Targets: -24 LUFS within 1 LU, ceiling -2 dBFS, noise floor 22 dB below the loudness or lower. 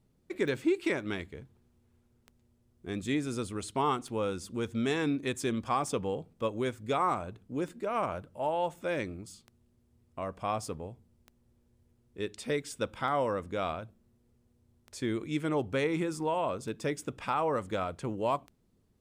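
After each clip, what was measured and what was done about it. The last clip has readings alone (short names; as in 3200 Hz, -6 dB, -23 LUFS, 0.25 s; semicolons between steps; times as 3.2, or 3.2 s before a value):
clicks 11; loudness -33.0 LUFS; peak -18.5 dBFS; loudness target -24.0 LUFS
-> de-click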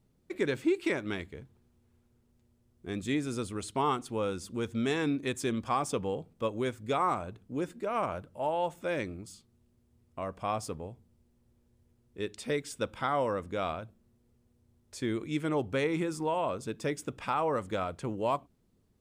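clicks 0; loudness -33.0 LUFS; peak -18.5 dBFS; loudness target -24.0 LUFS
-> gain +9 dB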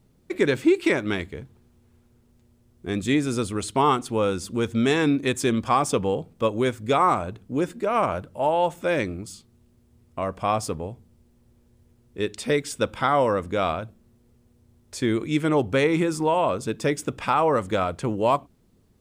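loudness -24.0 LUFS; peak -9.5 dBFS; noise floor -61 dBFS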